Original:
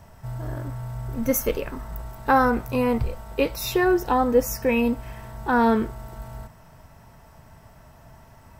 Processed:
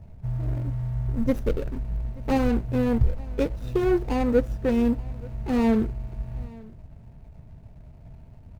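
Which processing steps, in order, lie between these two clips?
running median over 41 samples
low-shelf EQ 200 Hz +10 dB
on a send: single-tap delay 879 ms −23.5 dB
on the sum: level −3 dB

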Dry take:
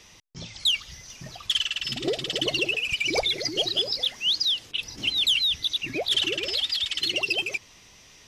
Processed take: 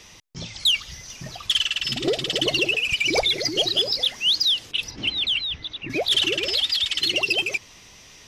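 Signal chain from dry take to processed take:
0:04.90–0:05.89: low-pass filter 3,600 Hz → 1,700 Hz 12 dB per octave
soft clipping −14.5 dBFS, distortion −24 dB
level +4.5 dB

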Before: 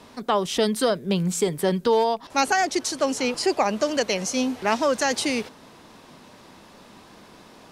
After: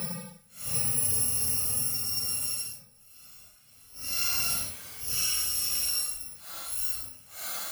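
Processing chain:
samples in bit-reversed order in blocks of 128 samples
extreme stretch with random phases 6.8×, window 0.05 s, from 0:01.76
level −9 dB

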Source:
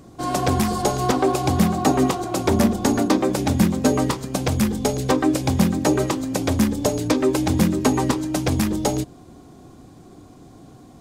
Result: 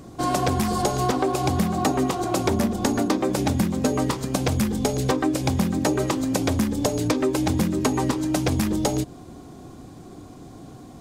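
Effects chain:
downward compressor 5 to 1, threshold −22 dBFS, peak gain reduction 9.5 dB
level +3 dB

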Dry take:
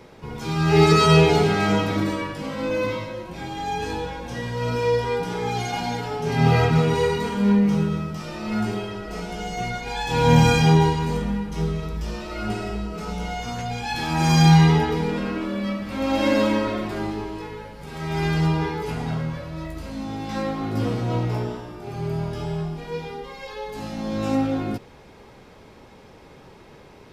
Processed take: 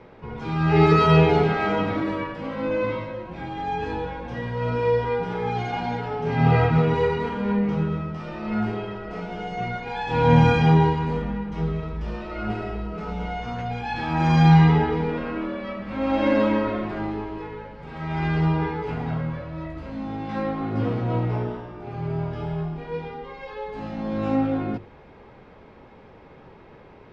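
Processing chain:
low-pass filter 2,400 Hz 12 dB per octave
mains-hum notches 50/100/150/200/250/300/350/400 Hz

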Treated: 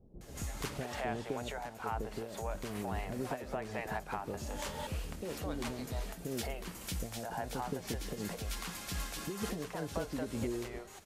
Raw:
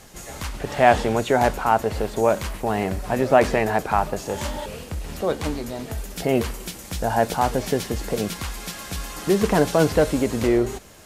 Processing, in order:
downward compressor 10 to 1, threshold −25 dBFS, peak gain reduction 16 dB
multiband delay without the direct sound lows, highs 210 ms, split 520 Hz
amplitude modulation by smooth noise, depth 60%
level −5 dB

